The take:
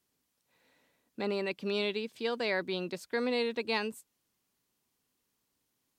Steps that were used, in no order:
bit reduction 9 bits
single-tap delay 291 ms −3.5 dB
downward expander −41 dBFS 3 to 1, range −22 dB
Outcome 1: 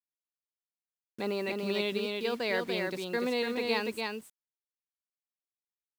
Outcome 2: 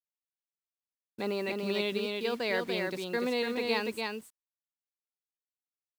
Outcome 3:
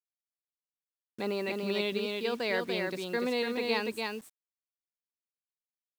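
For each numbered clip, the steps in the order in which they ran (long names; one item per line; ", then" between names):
downward expander, then bit reduction, then single-tap delay
bit reduction, then downward expander, then single-tap delay
downward expander, then single-tap delay, then bit reduction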